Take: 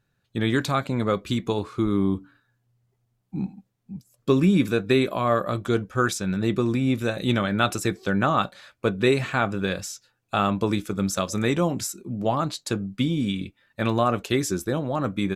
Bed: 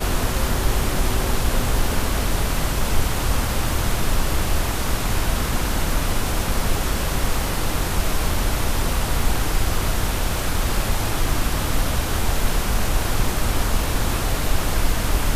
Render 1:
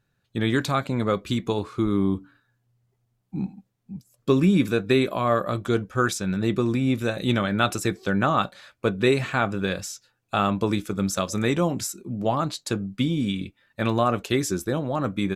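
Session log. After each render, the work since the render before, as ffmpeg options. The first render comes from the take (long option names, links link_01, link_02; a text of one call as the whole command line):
ffmpeg -i in.wav -af anull out.wav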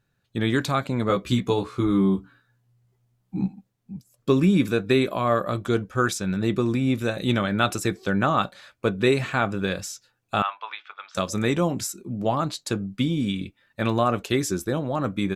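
ffmpeg -i in.wav -filter_complex "[0:a]asettb=1/sr,asplit=3[link_01][link_02][link_03];[link_01]atrim=end=1.084[link_04];[link_02]atrim=start=1.08:end=3.48,asetpts=PTS-STARTPTS,afade=type=in:duration=0.004:curve=qsin,afade=type=out:start_time=2.396:duration=0.004:curve=qsin,asplit=2[link_05][link_06];[link_06]adelay=16,volume=-2.5dB[link_07];[link_05][link_07]amix=inputs=2:normalize=0,atrim=end_sample=105840[link_08];[link_03]atrim=start=3.476[link_09];[link_04][link_08]acrossfade=duration=0.004:curve1=hsin:curve2=qsin[link_10];[link_10][link_09]acrossfade=duration=0.004:curve1=qsin:curve2=hsin,asettb=1/sr,asplit=3[link_11][link_12][link_13];[link_11]atrim=end=10.424[link_14];[link_12]atrim=start=10.42:end=11.15,asetpts=PTS-STARTPTS,afade=type=in:duration=0.004:curve=qsin,afade=type=out:start_time=0.726:duration=0.004:curve=qsin,asuperpass=centerf=1700:order=8:qfactor=0.63[link_15];[link_13]atrim=start=11.146[link_16];[link_14][link_15]acrossfade=duration=0.004:curve1=hsin:curve2=qsin[link_17];[link_17][link_16]acrossfade=duration=0.004:curve1=qsin:curve2=hsin" out.wav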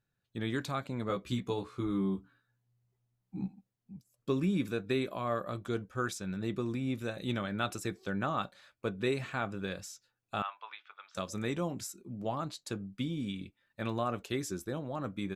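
ffmpeg -i in.wav -af "volume=-11.5dB" out.wav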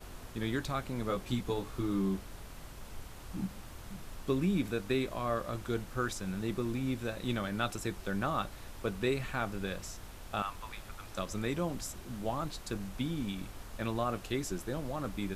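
ffmpeg -i in.wav -i bed.wav -filter_complex "[1:a]volume=-26dB[link_01];[0:a][link_01]amix=inputs=2:normalize=0" out.wav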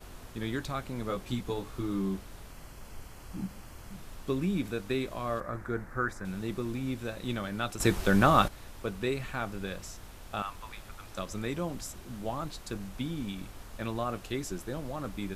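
ffmpeg -i in.wav -filter_complex "[0:a]asettb=1/sr,asplit=3[link_01][link_02][link_03];[link_01]atrim=end=2.514[link_04];[link_02]atrim=start=2.51:end=3.94,asetpts=PTS-STARTPTS,afade=type=in:duration=0.004:curve=qsin,afade=type=out:start_time=1.426:duration=0.004:curve=qsin,bandreject=frequency=3700:width=7.5[link_05];[link_03]atrim=start=3.936[link_06];[link_04][link_05]acrossfade=duration=0.004:curve1=hsin:curve2=qsin[link_07];[link_07][link_06]acrossfade=duration=0.004:curve1=qsin:curve2=hsin,asettb=1/sr,asplit=3[link_08][link_09][link_10];[link_08]atrim=end=5.404[link_11];[link_09]atrim=start=5.4:end=6.25,asetpts=PTS-STARTPTS,afade=type=in:duration=0.004:curve=qsin,afade=type=out:start_time=0.846:duration=0.004:curve=qsin,highshelf=frequency=2300:width_type=q:width=3:gain=-9[link_12];[link_10]atrim=start=6.246[link_13];[link_11][link_12]acrossfade=duration=0.004:curve1=hsin:curve2=qsin[link_14];[link_14][link_13]acrossfade=duration=0.004:curve1=qsin:curve2=hsin,asplit=3[link_15][link_16][link_17];[link_15]atrim=end=7.802[link_18];[link_16]atrim=start=7.798:end=8.482,asetpts=PTS-STARTPTS,volume=11dB[link_19];[link_17]atrim=start=8.478[link_20];[link_18][link_19]acrossfade=duration=0.004:curve1=hsin:curve2=hsin[link_21];[link_21][link_20]acrossfade=duration=0.004:curve1=hsin:curve2=hsin" out.wav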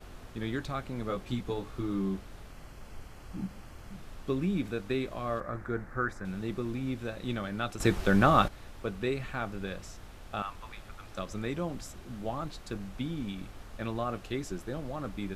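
ffmpeg -i in.wav -af "highshelf=frequency=6700:gain=-10,bandreject=frequency=970:width=18" out.wav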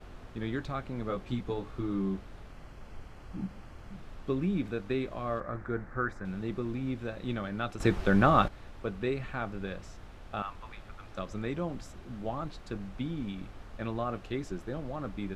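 ffmpeg -i in.wav -af "aemphasis=mode=reproduction:type=50kf" out.wav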